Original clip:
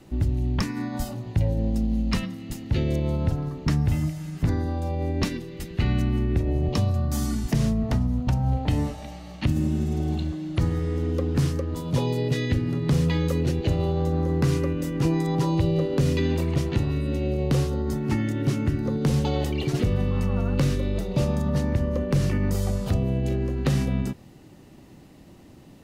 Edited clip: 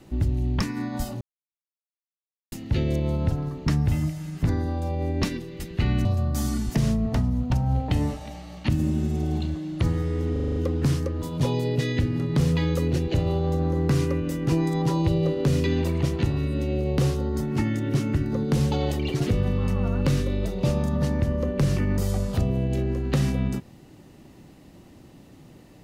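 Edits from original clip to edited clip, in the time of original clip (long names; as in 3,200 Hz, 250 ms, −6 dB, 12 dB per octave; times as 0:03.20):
0:01.21–0:02.52: silence
0:06.05–0:06.82: remove
0:11.09: stutter 0.04 s, 7 plays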